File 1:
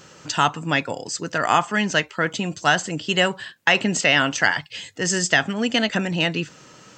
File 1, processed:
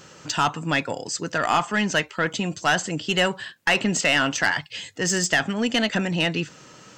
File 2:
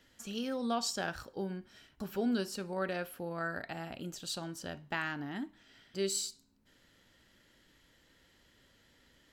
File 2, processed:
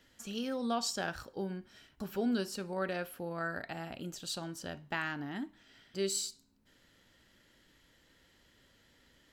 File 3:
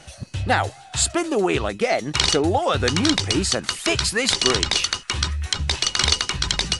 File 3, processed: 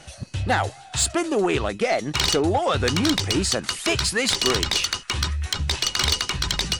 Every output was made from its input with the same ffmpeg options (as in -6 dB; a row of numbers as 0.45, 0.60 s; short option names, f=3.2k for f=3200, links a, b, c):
-af "asoftclip=type=tanh:threshold=-11.5dB"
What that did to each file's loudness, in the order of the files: -2.0, 0.0, -1.5 LU